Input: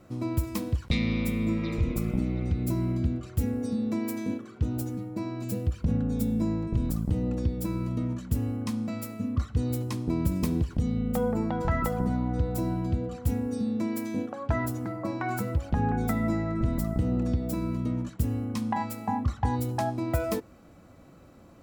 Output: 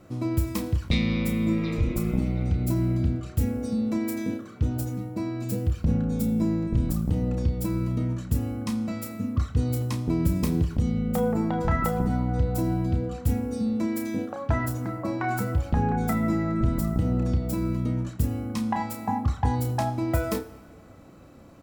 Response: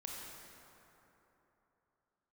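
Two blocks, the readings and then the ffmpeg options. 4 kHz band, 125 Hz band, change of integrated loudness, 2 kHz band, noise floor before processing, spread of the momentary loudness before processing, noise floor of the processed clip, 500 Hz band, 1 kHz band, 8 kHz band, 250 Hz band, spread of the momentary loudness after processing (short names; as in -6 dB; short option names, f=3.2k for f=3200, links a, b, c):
+3.0 dB, +3.0 dB, +2.5 dB, +2.5 dB, -52 dBFS, 4 LU, -47 dBFS, +2.0 dB, +2.5 dB, +2.5 dB, +2.0 dB, 5 LU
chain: -filter_complex "[0:a]asplit=2[a][b];[b]adelay=31,volume=-8dB[c];[a][c]amix=inputs=2:normalize=0,asplit=2[d][e];[1:a]atrim=start_sample=2205,asetrate=70560,aresample=44100,adelay=83[f];[e][f]afir=irnorm=-1:irlink=0,volume=-11.5dB[g];[d][g]amix=inputs=2:normalize=0,volume=2dB"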